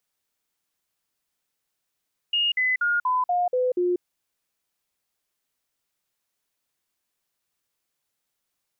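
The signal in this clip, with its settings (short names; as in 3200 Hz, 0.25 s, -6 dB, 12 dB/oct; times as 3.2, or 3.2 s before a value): stepped sine 2850 Hz down, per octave 2, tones 7, 0.19 s, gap 0.05 s -19.5 dBFS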